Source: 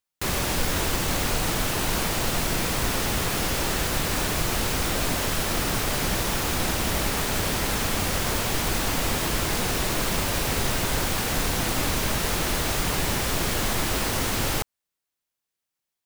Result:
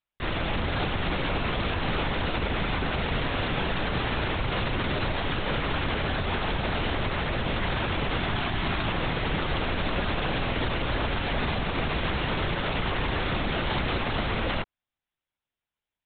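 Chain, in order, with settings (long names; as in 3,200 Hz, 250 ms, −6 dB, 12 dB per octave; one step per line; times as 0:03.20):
linear-prediction vocoder at 8 kHz whisper
0:08.18–0:08.88: parametric band 500 Hz −14.5 dB 0.21 octaves
brickwall limiter −18 dBFS, peak gain reduction 7.5 dB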